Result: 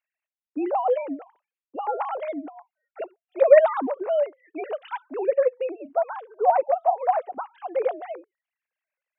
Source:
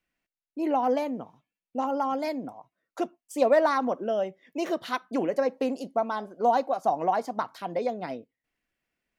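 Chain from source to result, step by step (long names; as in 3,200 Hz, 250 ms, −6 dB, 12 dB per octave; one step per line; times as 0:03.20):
three sine waves on the formant tracks
level +3.5 dB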